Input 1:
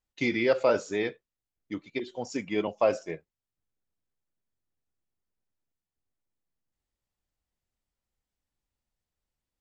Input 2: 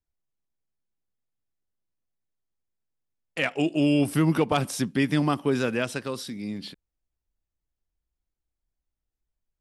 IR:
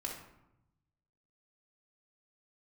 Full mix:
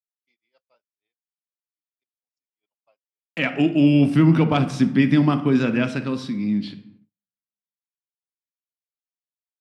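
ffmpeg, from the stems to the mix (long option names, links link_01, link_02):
-filter_complex "[0:a]highpass=1200,equalizer=frequency=1700:width_type=o:width=1.1:gain=-13,acompressor=threshold=-43dB:ratio=2.5,adelay=50,volume=-16.5dB[link_01];[1:a]equalizer=frequency=2300:width_type=o:width=0.32:gain=2.5,volume=-1dB,asplit=2[link_02][link_03];[link_03]volume=-3.5dB[link_04];[2:a]atrim=start_sample=2205[link_05];[link_04][link_05]afir=irnorm=-1:irlink=0[link_06];[link_01][link_02][link_06]amix=inputs=3:normalize=0,agate=range=-40dB:threshold=-57dB:ratio=16:detection=peak,highpass=140,lowpass=4500,lowshelf=frequency=300:width_type=q:width=1.5:gain=7.5"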